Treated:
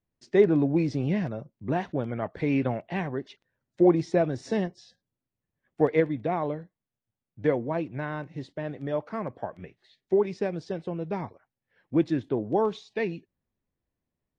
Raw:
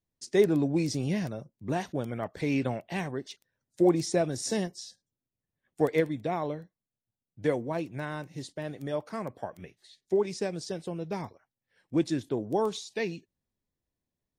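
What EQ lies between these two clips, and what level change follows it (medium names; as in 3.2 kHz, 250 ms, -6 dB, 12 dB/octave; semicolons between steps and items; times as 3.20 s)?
low-pass 2.5 kHz 12 dB/octave; +3.0 dB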